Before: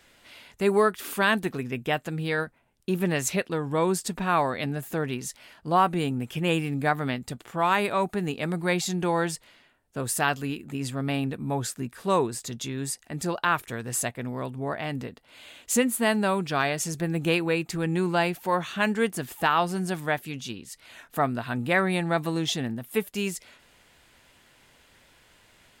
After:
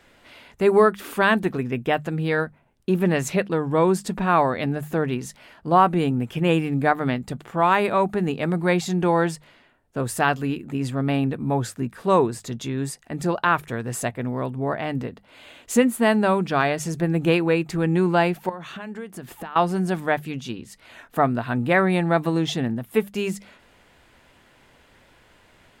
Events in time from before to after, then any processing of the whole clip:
0:18.49–0:19.56: downward compressor 12 to 1, threshold −35 dBFS
whole clip: high-shelf EQ 2,700 Hz −10.5 dB; mains-hum notches 50/100/150/200 Hz; level +6 dB

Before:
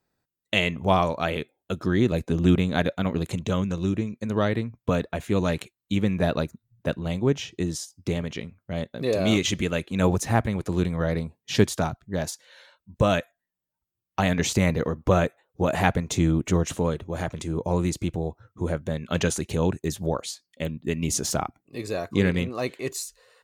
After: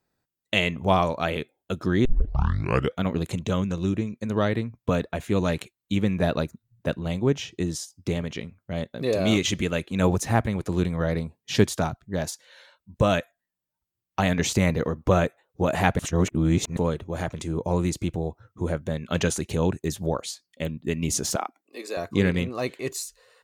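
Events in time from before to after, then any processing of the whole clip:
0:02.05: tape start 0.97 s
0:15.99–0:16.77: reverse
0:21.36–0:21.97: Bessel high-pass filter 410 Hz, order 8

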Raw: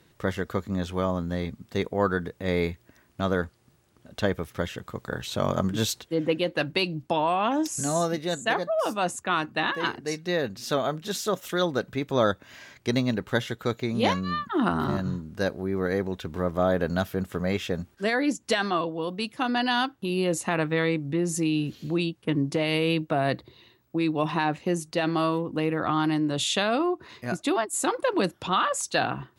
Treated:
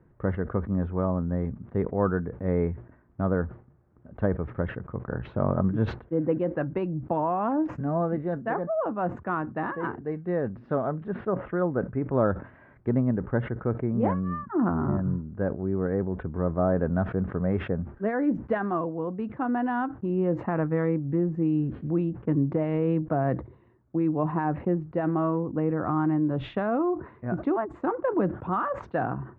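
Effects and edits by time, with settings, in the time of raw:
0:11.08–0:12.13: low-pass filter 2,800 Hz 24 dB per octave
0:12.89–0:16.33: high-frequency loss of the air 250 metres
whole clip: low-pass filter 1,600 Hz 24 dB per octave; spectral tilt −2 dB per octave; level that may fall only so fast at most 140 dB per second; level −3 dB

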